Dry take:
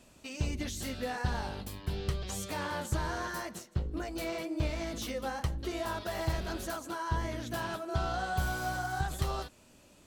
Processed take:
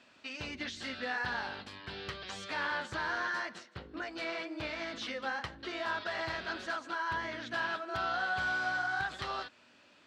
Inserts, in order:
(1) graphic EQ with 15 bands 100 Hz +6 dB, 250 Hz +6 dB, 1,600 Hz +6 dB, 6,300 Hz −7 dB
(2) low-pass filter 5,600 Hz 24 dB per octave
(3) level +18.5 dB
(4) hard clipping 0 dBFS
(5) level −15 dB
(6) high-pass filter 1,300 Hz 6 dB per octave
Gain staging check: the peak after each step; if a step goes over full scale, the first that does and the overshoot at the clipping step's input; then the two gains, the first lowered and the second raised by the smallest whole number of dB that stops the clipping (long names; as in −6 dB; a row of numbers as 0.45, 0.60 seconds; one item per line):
−15.0, −15.0, +3.5, 0.0, −15.0, −20.5 dBFS
step 3, 3.5 dB
step 3 +14.5 dB, step 5 −11 dB